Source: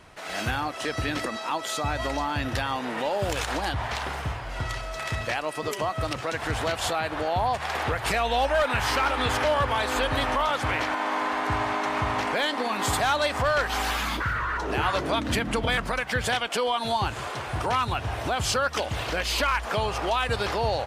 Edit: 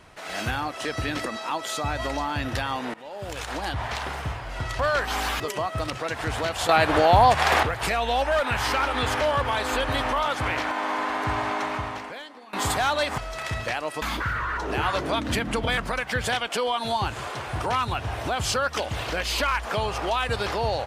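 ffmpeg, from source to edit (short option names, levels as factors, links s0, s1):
-filter_complex "[0:a]asplit=9[s0][s1][s2][s3][s4][s5][s6][s7][s8];[s0]atrim=end=2.94,asetpts=PTS-STARTPTS,afade=t=out:st=2.936:d=0.004:c=hsin:silence=0.0944061[s9];[s1]atrim=start=2.94:end=4.792,asetpts=PTS-STARTPTS,afade=t=in:d=0.87:silence=0.0944061[s10];[s2]atrim=start=13.408:end=14.022[s11];[s3]atrim=start=5.628:end=6.922[s12];[s4]atrim=start=6.918:end=7.862,asetpts=PTS-STARTPTS,volume=2.82[s13];[s5]atrim=start=7.858:end=12.76,asetpts=PTS-STARTPTS,afade=t=out:st=3.982:d=0.92:c=qua:silence=0.0944061[s14];[s6]atrim=start=12.76:end=13.412,asetpts=PTS-STARTPTS,afade=t=in:d=0.004:c=hsin:silence=0.0944061[s15];[s7]atrim=start=4.788:end=5.632[s16];[s8]atrim=start=14.018[s17];[s9][s10]concat=n=2:v=0:a=1[s18];[s18][s11]acrossfade=d=0.004:c1=hsin:c2=hsin[s19];[s19][s12]acrossfade=d=0.004:c1=hsin:c2=hsin[s20];[s20][s13]acrossfade=d=0.004:c1=hsin:c2=hsin[s21];[s14][s15]concat=n=2:v=0:a=1[s22];[s21][s22]acrossfade=d=0.004:c1=hsin:c2=hsin[s23];[s23][s16]acrossfade=d=0.004:c1=hsin:c2=hsin[s24];[s24][s17]acrossfade=d=0.004:c1=hsin:c2=hsin"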